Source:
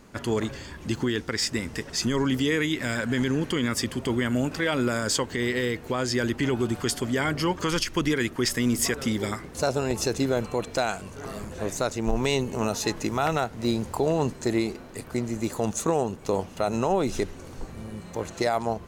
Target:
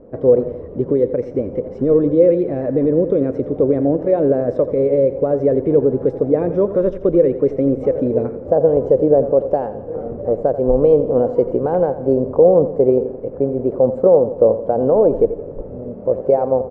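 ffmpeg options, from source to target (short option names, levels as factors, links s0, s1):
-af "lowpass=f=460:t=q:w=4.6,asetrate=49833,aresample=44100,aecho=1:1:86|172|258|344|430:0.224|0.112|0.056|0.028|0.014,volume=1.68"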